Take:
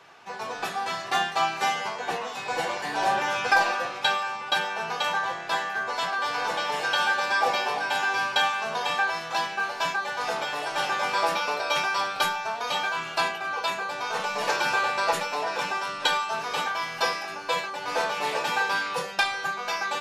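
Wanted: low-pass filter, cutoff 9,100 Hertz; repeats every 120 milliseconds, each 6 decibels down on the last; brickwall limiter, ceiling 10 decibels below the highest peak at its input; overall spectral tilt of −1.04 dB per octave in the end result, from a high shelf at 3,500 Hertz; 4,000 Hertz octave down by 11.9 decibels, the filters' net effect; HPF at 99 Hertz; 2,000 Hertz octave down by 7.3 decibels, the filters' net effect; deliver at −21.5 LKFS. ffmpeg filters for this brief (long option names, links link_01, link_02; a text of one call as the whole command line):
ffmpeg -i in.wav -af "highpass=99,lowpass=9100,equalizer=frequency=2000:width_type=o:gain=-7,highshelf=frequency=3500:gain=-8,equalizer=frequency=4000:width_type=o:gain=-7.5,alimiter=limit=-22dB:level=0:latency=1,aecho=1:1:120|240|360|480|600|720:0.501|0.251|0.125|0.0626|0.0313|0.0157,volume=9.5dB" out.wav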